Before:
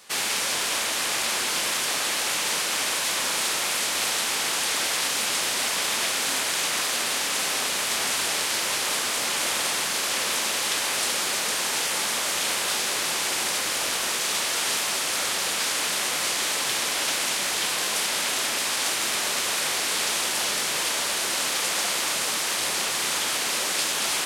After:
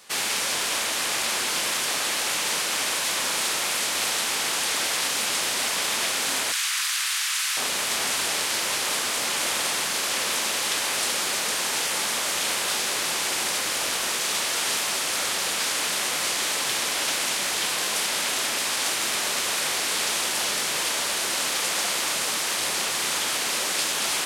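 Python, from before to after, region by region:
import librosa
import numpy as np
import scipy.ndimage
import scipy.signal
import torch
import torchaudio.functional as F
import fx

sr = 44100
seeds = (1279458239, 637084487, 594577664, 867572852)

y = fx.chain(x, sr, fx.highpass(hz=1200.0, slope=24),
    fx.env_flatten(amount_pct=50), at=(6.52, 7.57))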